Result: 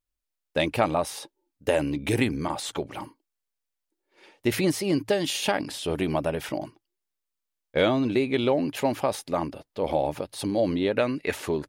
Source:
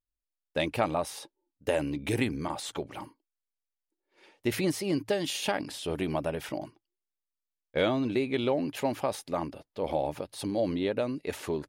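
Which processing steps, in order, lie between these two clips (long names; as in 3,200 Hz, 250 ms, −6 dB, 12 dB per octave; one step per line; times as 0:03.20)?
0:10.93–0:11.33: parametric band 1,900 Hz +9 dB 1.5 octaves
level +4.5 dB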